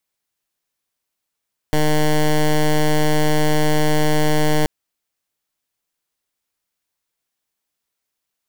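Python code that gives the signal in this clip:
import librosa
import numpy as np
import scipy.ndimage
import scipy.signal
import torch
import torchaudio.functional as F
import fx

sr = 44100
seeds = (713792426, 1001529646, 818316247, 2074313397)

y = fx.pulse(sr, length_s=2.93, hz=152.0, level_db=-15.0, duty_pct=12)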